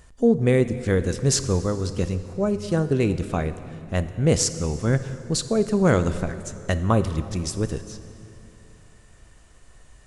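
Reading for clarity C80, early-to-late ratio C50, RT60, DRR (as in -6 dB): 13.0 dB, 12.0 dB, 2.8 s, 11.0 dB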